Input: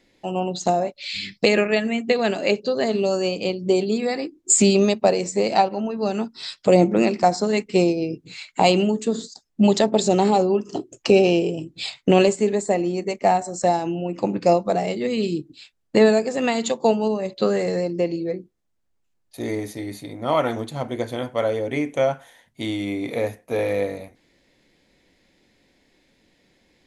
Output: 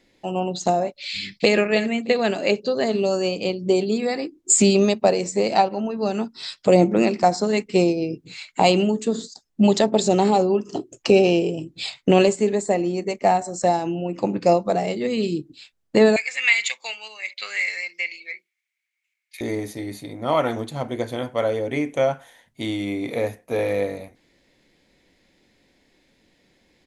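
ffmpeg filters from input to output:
ffmpeg -i in.wav -filter_complex "[0:a]asplit=2[link_01][link_02];[link_02]afade=type=in:start_time=1.09:duration=0.01,afade=type=out:start_time=1.55:duration=0.01,aecho=0:1:310|620|930:0.237137|0.0592843|0.0148211[link_03];[link_01][link_03]amix=inputs=2:normalize=0,asettb=1/sr,asplit=3[link_04][link_05][link_06];[link_04]atrim=end=16.164[link_07];[link_05]atrim=start=16.16:end=19.41,asetpts=PTS-STARTPTS,afade=type=in:duration=0.004:curve=qsin,afade=type=out:start_time=3.246:duration=0.004:curve=qsin,highpass=frequency=2200:width_type=q:width=12[link_08];[link_06]atrim=start=19.406[link_09];[link_07][link_08]acrossfade=duration=0.004:curve1=hsin:curve2=qsin[link_10];[link_10][link_09]acrossfade=duration=0.004:curve1=qsin:curve2=hsin" out.wav

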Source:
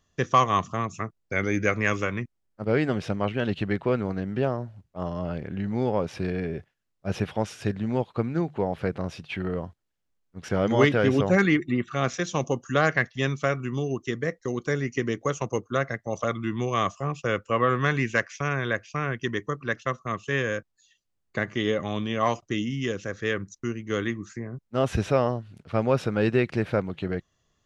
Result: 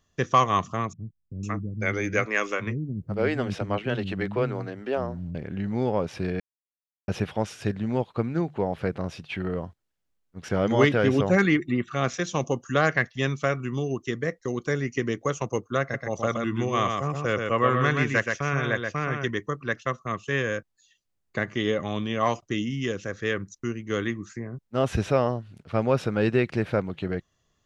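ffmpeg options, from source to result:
ffmpeg -i in.wav -filter_complex "[0:a]asettb=1/sr,asplit=3[link_01][link_02][link_03];[link_01]atrim=end=0.934[link_04];[link_02]atrim=start=0.93:end=5.35,asetpts=PTS-STARTPTS,afade=type=in:duration=0.004:curve=qsin,afade=type=out:start_time=4.416:duration=0.004:curve=qsin,acrossover=split=250[link_05][link_06];[link_06]adelay=500[link_07];[link_05][link_07]amix=inputs=2:normalize=0,atrim=end_sample=194922[link_08];[link_03]atrim=start=5.346[link_09];[link_04][link_08]acrossfade=duration=0.004:curve1=hsin:curve2=qsin[link_10];[link_10][link_09]acrossfade=duration=0.004:curve1=qsin:curve2=hsin,asettb=1/sr,asplit=3[link_11][link_12][link_13];[link_11]atrim=end=15.814[link_14];[link_12]atrim=start=15.81:end=19.31,asetpts=PTS-STARTPTS,afade=type=in:duration=0.004:curve=qsin,afade=type=out:start_time=3.496:duration=0.004:curve=qsin,aecho=1:1:126:0.596,atrim=end_sample=154350[link_15];[link_13]atrim=start=19.306[link_16];[link_14][link_15]acrossfade=duration=0.004:curve1=hsin:curve2=qsin[link_17];[link_17][link_16]acrossfade=duration=0.004:curve1=qsin:curve2=hsin,asplit=3[link_18][link_19][link_20];[link_18]atrim=end=6.4,asetpts=PTS-STARTPTS,afade=type=out:start_time=6.396:duration=0.004:curve=hsin[link_21];[link_19]atrim=start=6.4:end=7.08,asetpts=PTS-STARTPTS,volume=0[link_22];[link_20]atrim=start=7.08,asetpts=PTS-STARTPTS,afade=type=in:duration=0.004:curve=hsin[link_23];[link_21][link_22][link_23]concat=n=3:v=0:a=1" out.wav

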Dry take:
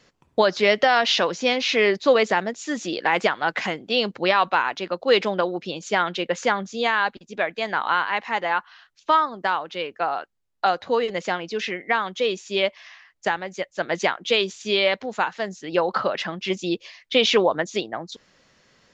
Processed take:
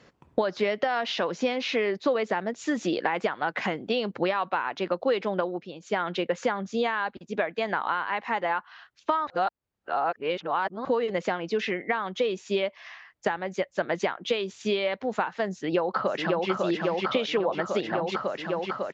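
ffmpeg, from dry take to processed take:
ffmpeg -i in.wav -filter_complex "[0:a]asplit=2[link_01][link_02];[link_02]afade=type=in:start_time=15.51:duration=0.01,afade=type=out:start_time=16.5:duration=0.01,aecho=0:1:550|1100|1650|2200|2750|3300|3850|4400|4950|5500|6050|6600:0.794328|0.595746|0.44681|0.335107|0.25133|0.188498|0.141373|0.10603|0.0795225|0.0596419|0.0447314|0.0335486[link_03];[link_01][link_03]amix=inputs=2:normalize=0,asplit=5[link_04][link_05][link_06][link_07][link_08];[link_04]atrim=end=5.67,asetpts=PTS-STARTPTS,afade=type=out:start_time=5.37:duration=0.3:silence=0.211349[link_09];[link_05]atrim=start=5.67:end=5.8,asetpts=PTS-STARTPTS,volume=-13.5dB[link_10];[link_06]atrim=start=5.8:end=9.272,asetpts=PTS-STARTPTS,afade=type=in:duration=0.3:silence=0.211349[link_11];[link_07]atrim=start=9.268:end=10.852,asetpts=PTS-STARTPTS,areverse[link_12];[link_08]atrim=start=10.848[link_13];[link_09][link_10][link_11]concat=n=3:v=0:a=1[link_14];[link_14][link_12]acrossfade=duration=0.004:curve1=hsin:curve2=hsin[link_15];[link_15][link_13]acrossfade=duration=0.004:curve1=hsin:curve2=hsin,highpass=45,acompressor=threshold=-27dB:ratio=6,highshelf=frequency=3100:gain=-12,volume=5dB" out.wav

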